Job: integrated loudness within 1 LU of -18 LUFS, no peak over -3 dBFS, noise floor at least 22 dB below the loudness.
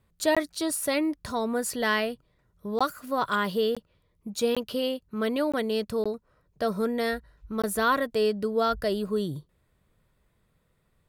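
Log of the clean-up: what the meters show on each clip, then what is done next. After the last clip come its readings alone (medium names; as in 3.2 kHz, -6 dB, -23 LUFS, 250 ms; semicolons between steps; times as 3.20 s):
dropouts 7; longest dropout 16 ms; loudness -28.0 LUFS; peak level -12.0 dBFS; loudness target -18.0 LUFS
-> interpolate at 0.35/2.79/3.75/4.55/5.52/6.04/7.62 s, 16 ms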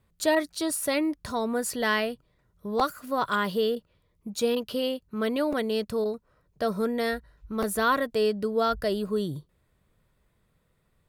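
dropouts 0; loudness -28.0 LUFS; peak level -12.0 dBFS; loudness target -18.0 LUFS
-> trim +10 dB; peak limiter -3 dBFS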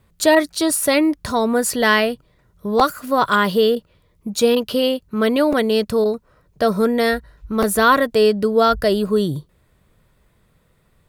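loudness -18.0 LUFS; peak level -3.0 dBFS; noise floor -60 dBFS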